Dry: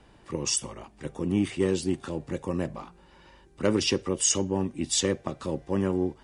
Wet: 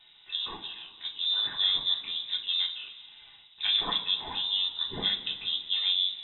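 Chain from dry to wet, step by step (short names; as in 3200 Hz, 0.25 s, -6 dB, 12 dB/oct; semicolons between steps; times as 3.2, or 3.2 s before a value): two-slope reverb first 0.25 s, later 2.6 s, from -18 dB, DRR -1 dB; inverted band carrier 3800 Hz; gain -5 dB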